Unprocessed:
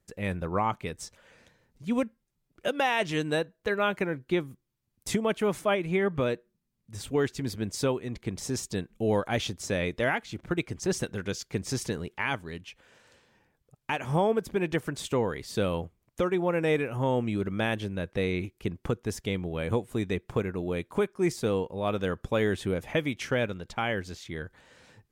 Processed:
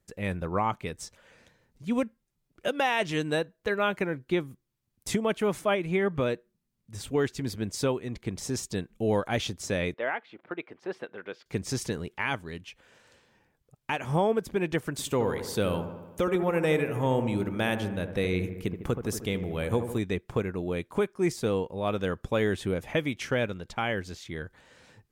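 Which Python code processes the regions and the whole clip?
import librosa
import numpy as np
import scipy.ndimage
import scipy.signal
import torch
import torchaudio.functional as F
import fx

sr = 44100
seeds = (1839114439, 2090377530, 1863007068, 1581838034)

y = fx.chain(x, sr, fx.highpass(hz=460.0, slope=12),
    fx.air_absorb(metres=440.0), at=(9.94, 11.46))
y = fx.chain(y, sr, fx.high_shelf(hz=10000.0, db=12.0),
    fx.echo_wet_lowpass(ms=76, feedback_pct=64, hz=1500.0, wet_db=-8.5), at=(14.91, 19.98))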